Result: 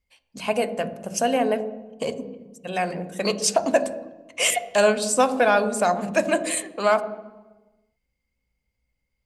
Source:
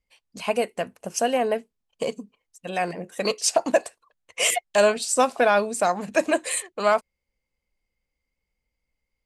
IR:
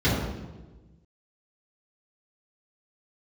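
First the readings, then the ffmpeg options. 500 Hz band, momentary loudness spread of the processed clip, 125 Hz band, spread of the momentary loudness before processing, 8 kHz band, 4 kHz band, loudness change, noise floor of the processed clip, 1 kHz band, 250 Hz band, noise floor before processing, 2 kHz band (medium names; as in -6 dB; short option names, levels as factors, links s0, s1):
+1.0 dB, 15 LU, +4.5 dB, 11 LU, 0.0 dB, +0.5 dB, +1.0 dB, -78 dBFS, +1.0 dB, +3.5 dB, -83 dBFS, +1.0 dB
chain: -filter_complex "[0:a]asplit=2[s0][s1];[1:a]atrim=start_sample=2205[s2];[s1][s2]afir=irnorm=-1:irlink=0,volume=0.0501[s3];[s0][s3]amix=inputs=2:normalize=0"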